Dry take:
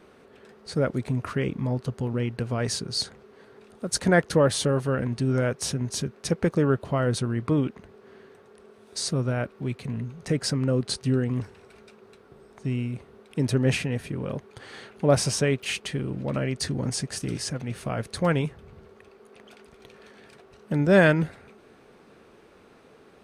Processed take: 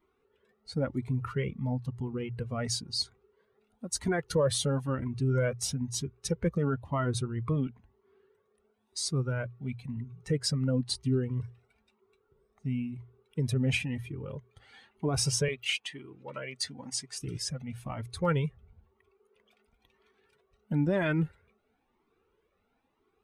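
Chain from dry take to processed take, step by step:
spectral dynamics exaggerated over time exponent 1.5
0:15.48–0:17.20: meter weighting curve A
brickwall limiter −19.5 dBFS, peak gain reduction 10.5 dB
mains-hum notches 60/120 Hz
flanger whose copies keep moving one way rising 1 Hz
level +5 dB

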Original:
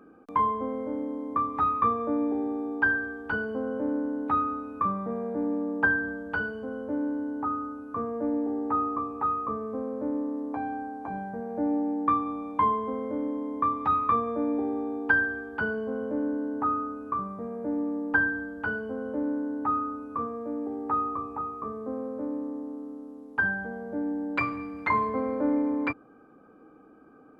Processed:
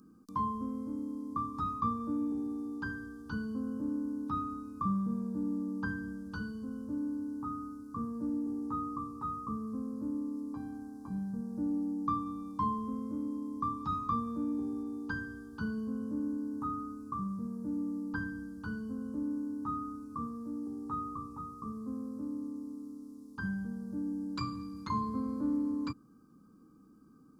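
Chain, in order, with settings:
drawn EQ curve 100 Hz 0 dB, 200 Hz +3 dB, 710 Hz −27 dB, 1,100 Hz −7 dB, 2,100 Hz −26 dB, 4,900 Hz +9 dB

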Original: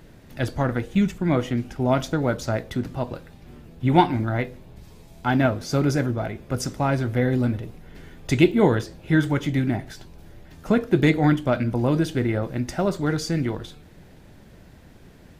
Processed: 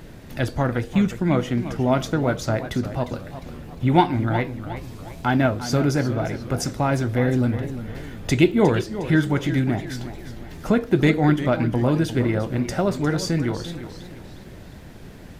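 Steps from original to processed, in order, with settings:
in parallel at +3 dB: downward compressor, threshold −34 dBFS, peak gain reduction 22 dB
on the sum: feedback echo with a swinging delay time 355 ms, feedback 43%, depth 122 cents, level −12 dB
level −1 dB

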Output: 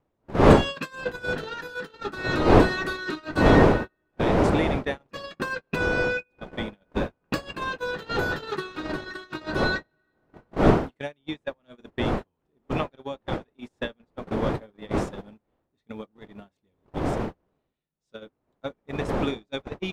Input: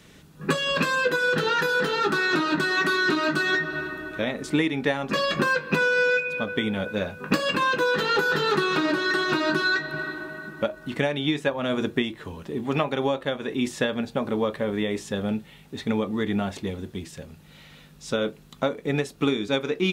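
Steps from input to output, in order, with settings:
wind on the microphone 540 Hz −22 dBFS
noise gate −21 dBFS, range −37 dB
level −4.5 dB

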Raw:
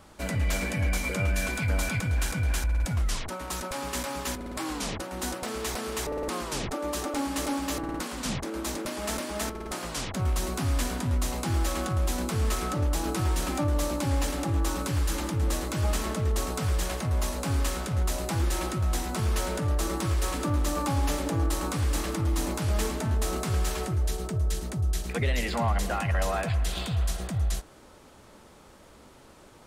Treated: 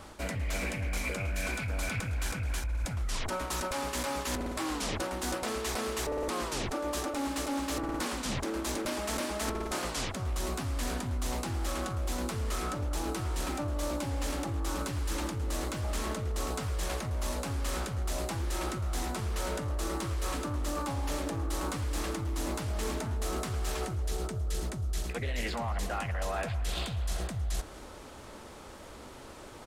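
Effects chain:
parametric band 170 Hz −5 dB 0.61 octaves
reversed playback
downward compressor 12 to 1, threshold −35 dBFS, peak gain reduction 13.5 dB
reversed playback
repeating echo 235 ms, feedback 52%, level −21.5 dB
highs frequency-modulated by the lows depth 0.23 ms
level +5.5 dB

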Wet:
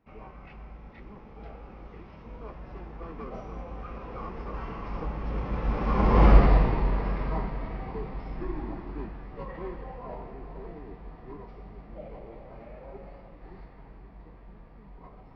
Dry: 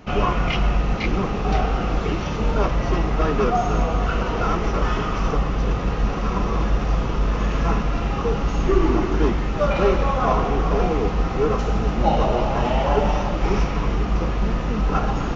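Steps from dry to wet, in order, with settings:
source passing by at 0:06.32, 20 m/s, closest 3.4 metres
bass and treble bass −1 dB, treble −11 dB
formants moved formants −3 semitones
level +6.5 dB

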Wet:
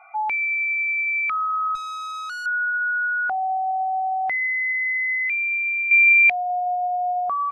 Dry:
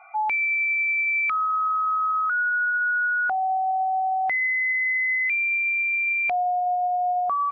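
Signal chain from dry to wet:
0:01.75–0:02.46: tube saturation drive 30 dB, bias 0.35
0:05.91–0:06.50: high shelf with overshoot 1,500 Hz +6.5 dB, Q 3

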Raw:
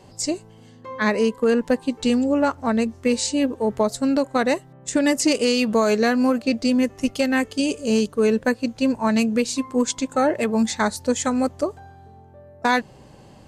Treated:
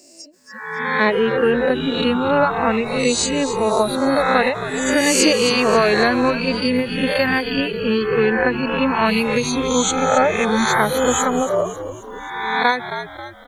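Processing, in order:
peak hold with a rise ahead of every peak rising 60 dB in 1.64 s
high-pass filter 290 Hz 6 dB per octave
reverb reduction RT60 0.55 s
0:07.42–0:09.04: low-pass filter 4,100 Hz → 7,000 Hz 24 dB per octave
in parallel at −5 dB: bit-depth reduction 6 bits, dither triangular
on the sum: noise reduction from a noise print of the clip's start 27 dB
on a send: echo with shifted repeats 269 ms, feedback 47%, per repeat −76 Hz, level −11 dB
on the sum: every ending faded ahead of time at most 140 dB per second

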